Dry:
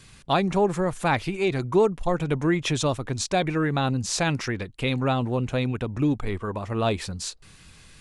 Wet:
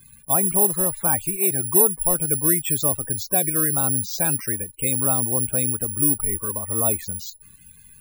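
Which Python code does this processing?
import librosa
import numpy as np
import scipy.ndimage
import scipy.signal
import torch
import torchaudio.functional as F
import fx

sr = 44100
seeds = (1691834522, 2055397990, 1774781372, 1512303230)

y = fx.spec_topn(x, sr, count=32)
y = (np.kron(y[::4], np.eye(4)[0]) * 4)[:len(y)]
y = fx.dmg_crackle(y, sr, seeds[0], per_s=17.0, level_db=-49.0)
y = y * 10.0 ** (-3.0 / 20.0)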